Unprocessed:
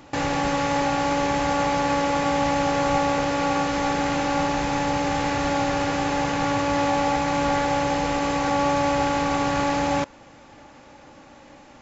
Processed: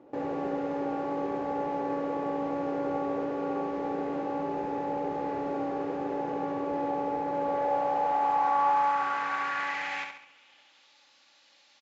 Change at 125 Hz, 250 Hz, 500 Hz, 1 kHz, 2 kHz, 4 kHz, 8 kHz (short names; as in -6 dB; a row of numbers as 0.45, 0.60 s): -16.5 dB, -9.0 dB, -6.5 dB, -6.0 dB, -10.0 dB, -18.0 dB, n/a